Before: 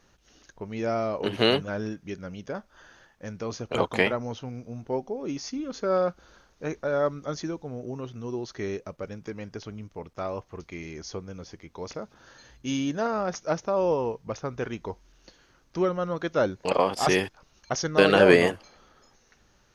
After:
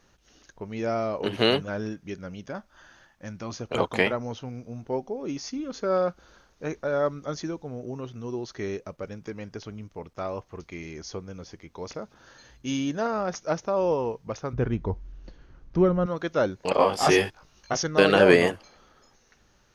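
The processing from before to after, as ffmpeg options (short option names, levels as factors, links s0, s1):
-filter_complex "[0:a]asettb=1/sr,asplit=3[s0][s1][s2];[s0]atrim=end=2.464[s3];[s1]atrim=start=2.46:end=3.57,asetpts=PTS-STARTPTS,afade=t=in:d=0.004:c=qsin,afade=t=out:st=1.106:d=0.004:c=qsin,equalizer=f=450:w=6.7:g=-13.5[s4];[s2]atrim=start=3.566[s5];[s3][s4]acrossfade=d=0.004:c1=hsin:c2=qsin[s6];[s6][s5]acrossfade=d=0.004:c1=qsin:c2=hsin,asettb=1/sr,asplit=3[s7][s8][s9];[s7]atrim=end=14.534[s10];[s8]atrim=start=14.53:end=16.06,asetpts=PTS-STARTPTS,afade=t=in:d=0.004:c=qsin,afade=t=out:st=1.526:d=0.004:c=qsin,aemphasis=mode=reproduction:type=riaa[s11];[s9]atrim=start=16.056[s12];[s10][s11]acrossfade=d=0.004:c1=hsin:c2=qsin[s13];[s13][s12]acrossfade=d=0.004:c1=qsin:c2=hsin,asettb=1/sr,asplit=3[s14][s15][s16];[s14]atrim=end=16.764[s17];[s15]atrim=start=16.76:end=17.83,asetpts=PTS-STARTPTS,afade=t=in:d=0.004:c=qsin,afade=t=out:st=1.066:d=0.004:c=qsin,asplit=2[s18][s19];[s19]adelay=19,volume=0.794[s20];[s18][s20]amix=inputs=2:normalize=0,atrim=end_sample=47187[s21];[s16]atrim=start=17.826[s22];[s17][s21]acrossfade=d=0.004:c1=hsin:c2=qsin[s23];[s23][s22]acrossfade=d=0.004:c1=qsin:c2=hsin"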